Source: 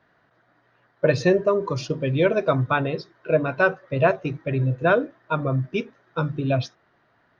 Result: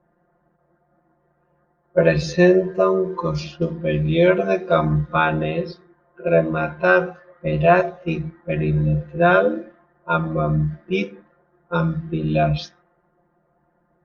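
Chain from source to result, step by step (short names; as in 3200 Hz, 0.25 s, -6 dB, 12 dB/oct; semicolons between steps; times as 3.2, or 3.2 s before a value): granular stretch 1.9×, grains 24 ms; low-pass opened by the level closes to 750 Hz, open at -20 dBFS; gain +4 dB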